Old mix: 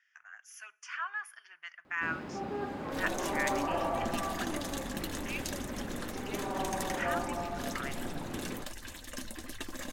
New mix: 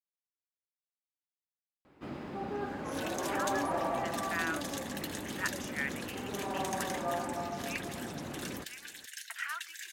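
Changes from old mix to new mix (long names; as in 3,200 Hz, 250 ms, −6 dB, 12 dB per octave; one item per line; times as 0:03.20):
speech: entry +2.40 s
second sound: add Butterworth high-pass 1,500 Hz 96 dB per octave
reverb: off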